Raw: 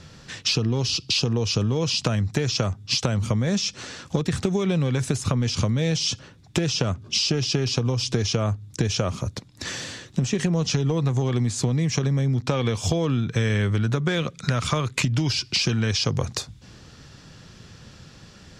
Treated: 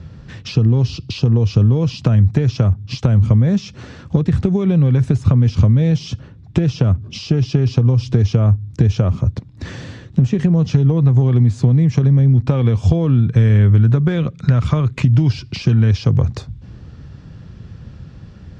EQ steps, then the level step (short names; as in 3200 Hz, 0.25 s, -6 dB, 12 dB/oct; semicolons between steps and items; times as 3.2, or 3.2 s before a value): HPF 48 Hz; RIAA curve playback; high shelf 7600 Hz -5 dB; 0.0 dB